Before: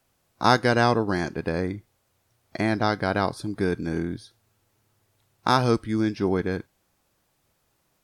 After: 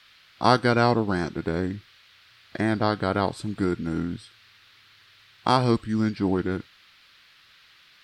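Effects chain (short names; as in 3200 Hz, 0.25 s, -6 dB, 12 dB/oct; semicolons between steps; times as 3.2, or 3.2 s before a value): formant shift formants -2 st; band noise 1200–4500 Hz -56 dBFS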